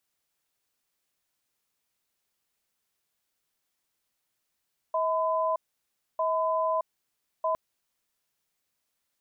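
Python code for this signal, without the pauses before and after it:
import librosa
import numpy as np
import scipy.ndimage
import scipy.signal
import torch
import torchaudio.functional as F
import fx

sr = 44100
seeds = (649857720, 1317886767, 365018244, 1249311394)

y = fx.cadence(sr, length_s=2.61, low_hz=641.0, high_hz=1010.0, on_s=0.62, off_s=0.63, level_db=-26.5)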